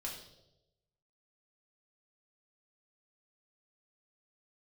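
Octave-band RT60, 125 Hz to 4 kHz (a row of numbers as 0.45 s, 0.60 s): 1.2 s, 0.95 s, 1.1 s, 0.75 s, 0.60 s, 0.80 s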